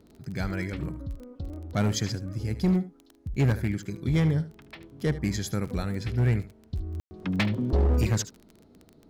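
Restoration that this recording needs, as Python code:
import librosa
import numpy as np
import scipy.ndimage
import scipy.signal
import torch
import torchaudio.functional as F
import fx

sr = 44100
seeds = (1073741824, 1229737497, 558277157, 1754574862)

y = fx.fix_declip(x, sr, threshold_db=-18.0)
y = fx.fix_declick_ar(y, sr, threshold=6.5)
y = fx.fix_ambience(y, sr, seeds[0], print_start_s=8.56, print_end_s=9.06, start_s=7.0, end_s=7.11)
y = fx.fix_echo_inverse(y, sr, delay_ms=75, level_db=-15.0)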